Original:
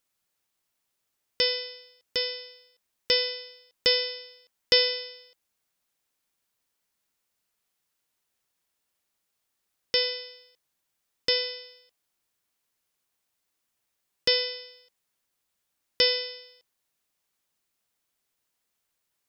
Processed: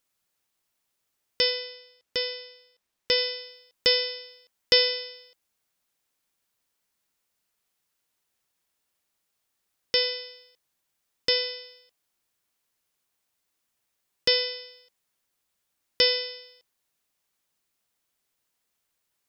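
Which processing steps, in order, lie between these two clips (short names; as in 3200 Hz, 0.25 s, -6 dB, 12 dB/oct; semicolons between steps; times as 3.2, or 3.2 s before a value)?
1.5–3.18 high shelf 6900 Hz -6.5 dB; gain +1 dB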